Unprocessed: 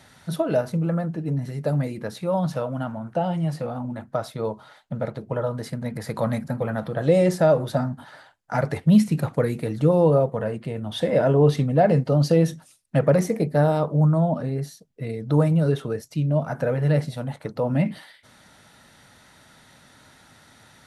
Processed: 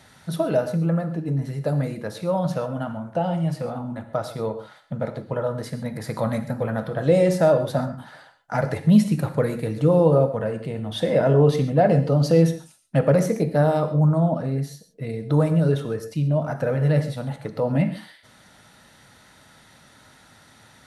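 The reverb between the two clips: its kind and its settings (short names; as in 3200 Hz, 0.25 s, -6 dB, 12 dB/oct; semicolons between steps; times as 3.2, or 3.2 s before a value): non-linear reverb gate 0.16 s flat, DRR 9 dB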